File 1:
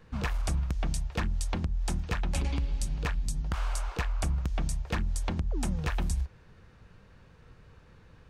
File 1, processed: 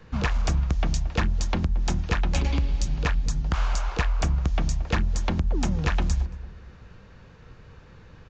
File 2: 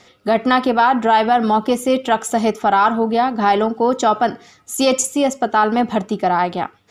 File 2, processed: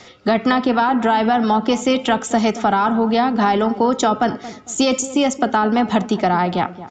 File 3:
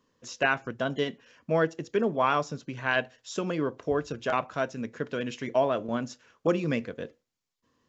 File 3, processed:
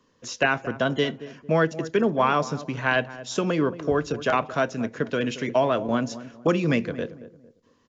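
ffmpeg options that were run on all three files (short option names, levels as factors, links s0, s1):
-filter_complex "[0:a]acrossover=split=300|850[s0][s1][s2];[s0]acompressor=threshold=0.0562:ratio=4[s3];[s1]acompressor=threshold=0.0316:ratio=4[s4];[s2]acompressor=threshold=0.0447:ratio=4[s5];[s3][s4][s5]amix=inputs=3:normalize=0,asplit=2[s6][s7];[s7]adelay=226,lowpass=f=910:p=1,volume=0.211,asplit=2[s8][s9];[s9]adelay=226,lowpass=f=910:p=1,volume=0.36,asplit=2[s10][s11];[s11]adelay=226,lowpass=f=910:p=1,volume=0.36[s12];[s8][s10][s12]amix=inputs=3:normalize=0[s13];[s6][s13]amix=inputs=2:normalize=0,aresample=16000,aresample=44100,volume=2.11"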